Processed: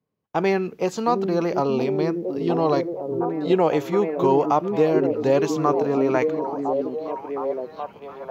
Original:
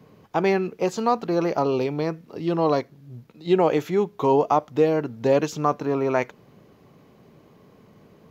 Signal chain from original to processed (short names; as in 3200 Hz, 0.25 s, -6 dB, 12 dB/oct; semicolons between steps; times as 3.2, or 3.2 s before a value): on a send: delay with a stepping band-pass 0.715 s, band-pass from 260 Hz, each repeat 0.7 oct, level -1 dB; on the sum: gate -42 dBFS, range -29 dB